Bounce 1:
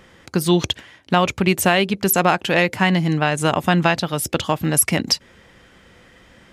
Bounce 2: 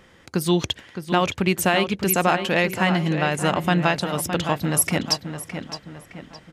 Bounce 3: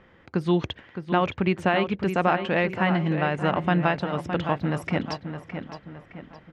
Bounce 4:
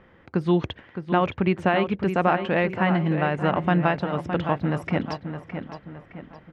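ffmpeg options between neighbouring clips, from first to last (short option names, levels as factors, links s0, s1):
-filter_complex "[0:a]asplit=2[s0][s1];[s1]adelay=614,lowpass=f=3800:p=1,volume=0.376,asplit=2[s2][s3];[s3]adelay=614,lowpass=f=3800:p=1,volume=0.44,asplit=2[s4][s5];[s5]adelay=614,lowpass=f=3800:p=1,volume=0.44,asplit=2[s6][s7];[s7]adelay=614,lowpass=f=3800:p=1,volume=0.44,asplit=2[s8][s9];[s9]adelay=614,lowpass=f=3800:p=1,volume=0.44[s10];[s0][s2][s4][s6][s8][s10]amix=inputs=6:normalize=0,volume=0.668"
-af "lowpass=2300,volume=0.794"
-af "highshelf=f=3700:g=-8.5,volume=1.19"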